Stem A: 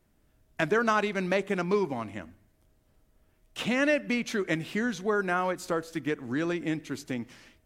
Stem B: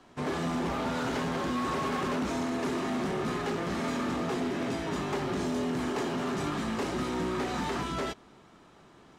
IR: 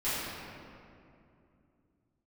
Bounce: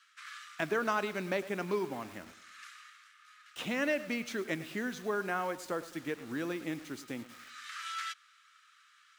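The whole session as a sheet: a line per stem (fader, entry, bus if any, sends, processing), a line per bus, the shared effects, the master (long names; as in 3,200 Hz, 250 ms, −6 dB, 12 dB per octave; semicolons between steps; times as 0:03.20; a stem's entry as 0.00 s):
−6.0 dB, 0.00 s, no send, echo send −16 dB, tape wow and flutter 24 cents; bit-depth reduction 8 bits, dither none
0.0 dB, 0.00 s, no send, no echo send, Butterworth high-pass 1,200 Hz 96 dB per octave; automatic ducking −19 dB, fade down 0.95 s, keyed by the first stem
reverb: not used
echo: repeating echo 106 ms, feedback 40%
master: low-shelf EQ 100 Hz −10.5 dB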